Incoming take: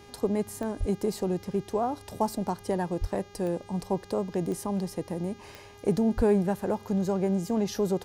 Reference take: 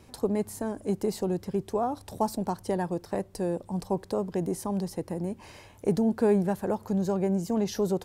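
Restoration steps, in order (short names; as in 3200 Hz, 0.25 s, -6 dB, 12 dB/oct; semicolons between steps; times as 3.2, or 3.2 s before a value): de-click; de-hum 406.7 Hz, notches 17; de-plosive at 0.79/3/6.16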